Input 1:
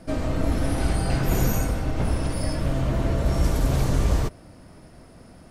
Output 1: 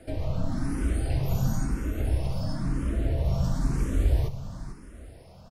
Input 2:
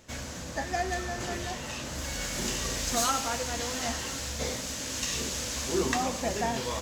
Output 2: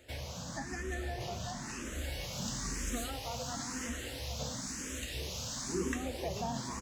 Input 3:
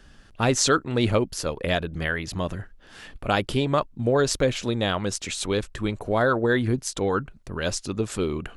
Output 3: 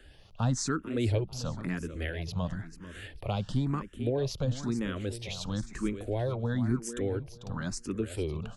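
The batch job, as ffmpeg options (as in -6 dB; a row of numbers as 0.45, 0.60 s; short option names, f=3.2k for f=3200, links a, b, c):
-filter_complex "[0:a]acrossover=split=280[a][b];[b]acompressor=threshold=-40dB:ratio=2[c];[a][c]amix=inputs=2:normalize=0,aecho=1:1:444|888|1332:0.266|0.0692|0.018,asplit=2[d][e];[e]afreqshift=0.99[f];[d][f]amix=inputs=2:normalize=1"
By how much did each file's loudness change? -4.0, -7.5, -8.0 LU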